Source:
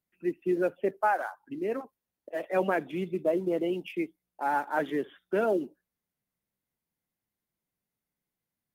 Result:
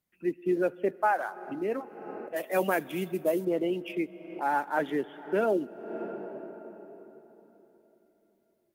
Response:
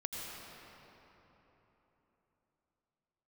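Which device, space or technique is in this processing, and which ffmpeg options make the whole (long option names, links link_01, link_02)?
ducked reverb: -filter_complex "[0:a]asplit=3[link_01][link_02][link_03];[1:a]atrim=start_sample=2205[link_04];[link_02][link_04]afir=irnorm=-1:irlink=0[link_05];[link_03]apad=whole_len=385538[link_06];[link_05][link_06]sidechaincompress=threshold=-54dB:ratio=3:attack=29:release=220,volume=-4dB[link_07];[link_01][link_07]amix=inputs=2:normalize=0,asettb=1/sr,asplit=3[link_08][link_09][link_10];[link_08]atrim=end=2.364[link_11];[link_09]atrim=start=2.36:end=3.45,asetpts=PTS-STARTPTS,afade=type=in:duration=0.004:curve=qsin,afade=type=out:start_time=1.086:duration=0.004:curve=qsin,aemphasis=mode=production:type=75fm[link_12];[link_10]atrim=start=3.446[link_13];[link_11][link_12]acrossfade=duration=0.004:curve1=hsin:curve2=qsin[link_14];[link_14][link_13]acrossfade=duration=0.004:curve1=qsin:curve2=hsin"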